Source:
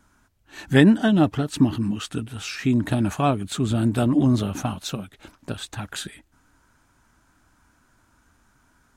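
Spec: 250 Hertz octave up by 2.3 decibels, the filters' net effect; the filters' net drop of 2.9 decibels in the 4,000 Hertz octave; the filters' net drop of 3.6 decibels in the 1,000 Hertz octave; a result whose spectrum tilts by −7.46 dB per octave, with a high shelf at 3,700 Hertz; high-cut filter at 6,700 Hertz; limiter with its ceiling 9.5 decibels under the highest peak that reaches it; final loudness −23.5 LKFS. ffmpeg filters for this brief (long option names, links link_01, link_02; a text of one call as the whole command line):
ffmpeg -i in.wav -af "lowpass=6700,equalizer=frequency=250:width_type=o:gain=3,equalizer=frequency=1000:width_type=o:gain=-6,highshelf=frequency=3700:gain=6,equalizer=frequency=4000:width_type=o:gain=-6.5,alimiter=limit=-12dB:level=0:latency=1" out.wav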